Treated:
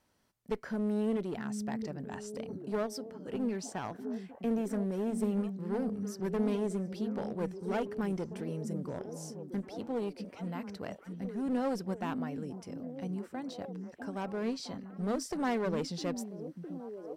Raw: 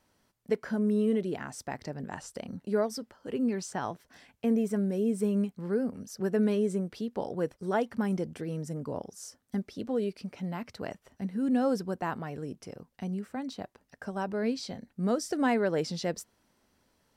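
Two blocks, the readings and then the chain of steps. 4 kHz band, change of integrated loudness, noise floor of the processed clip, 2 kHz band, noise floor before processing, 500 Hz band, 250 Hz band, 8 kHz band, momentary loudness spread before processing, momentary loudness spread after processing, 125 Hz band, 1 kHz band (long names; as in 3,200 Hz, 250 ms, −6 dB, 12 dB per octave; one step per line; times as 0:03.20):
−3.5 dB, −4.5 dB, −54 dBFS, −5.0 dB, −74 dBFS, −4.5 dB, −3.5 dB, −3.5 dB, 13 LU, 10 LU, −3.0 dB, −4.0 dB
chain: asymmetric clip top −30.5 dBFS
echo through a band-pass that steps 658 ms, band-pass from 220 Hz, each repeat 0.7 octaves, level −5 dB
level −3.5 dB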